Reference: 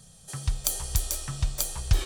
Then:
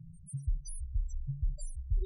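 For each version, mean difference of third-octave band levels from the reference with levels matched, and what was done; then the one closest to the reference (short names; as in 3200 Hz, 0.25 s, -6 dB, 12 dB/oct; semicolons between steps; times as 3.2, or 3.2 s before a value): 25.0 dB: reverse; compressor, threshold -36 dBFS, peak gain reduction 19 dB; reverse; loudest bins only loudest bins 4; gain +8 dB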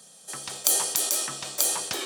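5.0 dB: HPF 250 Hz 24 dB/oct; sustainer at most 56 dB/s; gain +4 dB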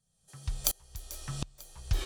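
7.5 dB: dynamic EQ 8500 Hz, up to -6 dB, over -46 dBFS, Q 2.4; dB-ramp tremolo swelling 1.4 Hz, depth 29 dB; gain +1.5 dB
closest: second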